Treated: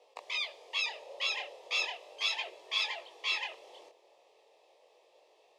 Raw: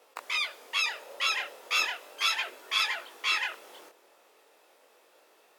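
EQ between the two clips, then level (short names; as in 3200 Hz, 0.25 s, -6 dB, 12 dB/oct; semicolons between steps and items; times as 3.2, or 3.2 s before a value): LPF 4600 Hz 12 dB/oct; fixed phaser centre 600 Hz, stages 4; 0.0 dB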